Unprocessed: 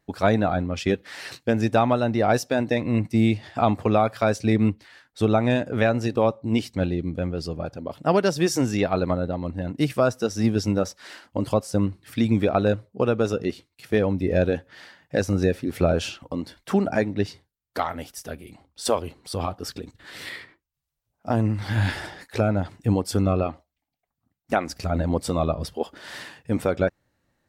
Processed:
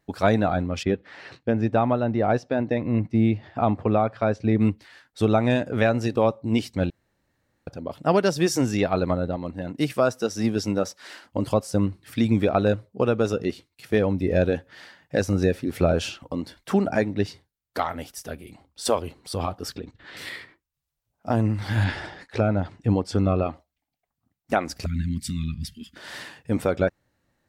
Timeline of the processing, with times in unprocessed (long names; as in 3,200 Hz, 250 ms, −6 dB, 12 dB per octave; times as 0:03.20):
0:00.83–0:04.61: head-to-tape spacing loss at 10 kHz 26 dB
0:06.90–0:07.67: fill with room tone
0:09.36–0:11.22: high-pass filter 170 Hz 6 dB per octave
0:19.76–0:20.17: low-pass filter 3,900 Hz
0:21.84–0:23.46: high-frequency loss of the air 84 metres
0:24.86–0:25.96: Chebyshev band-stop filter 230–1,900 Hz, order 3